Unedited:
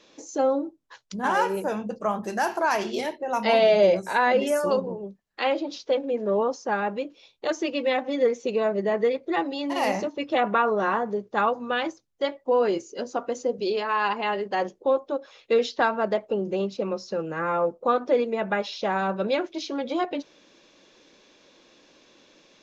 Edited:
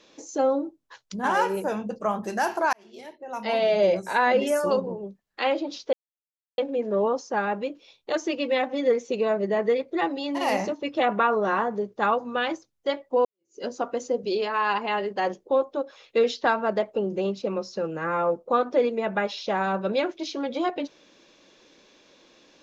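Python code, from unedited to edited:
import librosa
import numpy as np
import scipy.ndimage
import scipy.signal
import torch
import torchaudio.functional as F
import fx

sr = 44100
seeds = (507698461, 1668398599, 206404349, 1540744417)

y = fx.edit(x, sr, fx.fade_in_span(start_s=2.73, length_s=1.46),
    fx.insert_silence(at_s=5.93, length_s=0.65),
    fx.fade_in_span(start_s=12.6, length_s=0.33, curve='exp'), tone=tone)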